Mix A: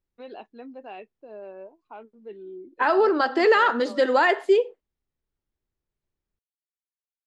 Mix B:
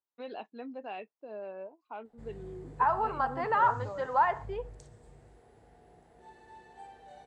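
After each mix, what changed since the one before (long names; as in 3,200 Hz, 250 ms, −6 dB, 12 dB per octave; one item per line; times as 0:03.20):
second voice: add resonant band-pass 960 Hz, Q 3.6
background: unmuted
master: add parametric band 370 Hz −5.5 dB 0.35 octaves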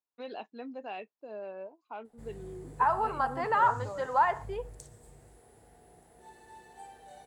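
master: remove high-frequency loss of the air 100 metres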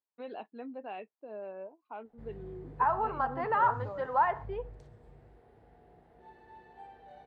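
master: add high-frequency loss of the air 330 metres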